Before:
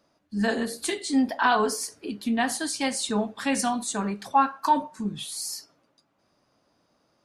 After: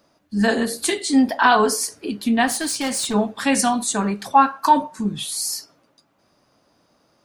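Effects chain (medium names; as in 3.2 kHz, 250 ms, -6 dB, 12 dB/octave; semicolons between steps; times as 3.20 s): treble shelf 12 kHz +5.5 dB; 2.47–3.14 s: overload inside the chain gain 27 dB; trim +6.5 dB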